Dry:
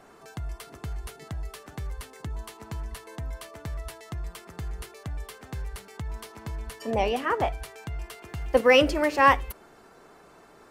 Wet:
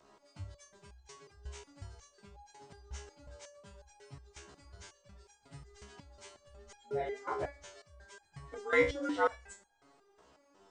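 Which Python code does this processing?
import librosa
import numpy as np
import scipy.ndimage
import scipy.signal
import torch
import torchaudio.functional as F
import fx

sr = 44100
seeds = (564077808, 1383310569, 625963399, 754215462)

y = fx.partial_stretch(x, sr, pct=87)
y = fx.high_shelf(y, sr, hz=4000.0, db=7.0)
y = fx.rev_double_slope(y, sr, seeds[0], early_s=0.47, late_s=3.2, knee_db=-20, drr_db=15.5)
y = fx.resonator_held(y, sr, hz=5.5, low_hz=69.0, high_hz=810.0)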